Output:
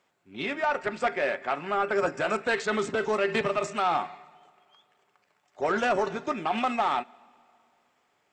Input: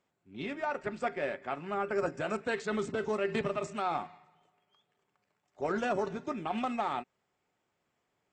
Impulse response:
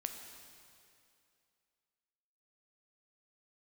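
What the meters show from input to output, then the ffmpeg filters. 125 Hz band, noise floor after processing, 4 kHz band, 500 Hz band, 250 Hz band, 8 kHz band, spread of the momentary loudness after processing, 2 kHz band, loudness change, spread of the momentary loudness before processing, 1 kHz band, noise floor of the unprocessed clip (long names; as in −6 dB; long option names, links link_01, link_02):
+1.5 dB, −72 dBFS, +9.0 dB, +5.5 dB, +3.0 dB, +8.0 dB, 6 LU, +8.5 dB, +6.5 dB, 7 LU, +7.5 dB, −81 dBFS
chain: -filter_complex "[0:a]asplit=2[link_01][link_02];[link_02]highpass=frequency=720:poles=1,volume=10dB,asoftclip=type=tanh:threshold=-20.5dB[link_03];[link_01][link_03]amix=inputs=2:normalize=0,lowpass=frequency=6500:poles=1,volume=-6dB,asplit=2[link_04][link_05];[1:a]atrim=start_sample=2205[link_06];[link_05][link_06]afir=irnorm=-1:irlink=0,volume=-17dB[link_07];[link_04][link_07]amix=inputs=2:normalize=0,volume=4dB"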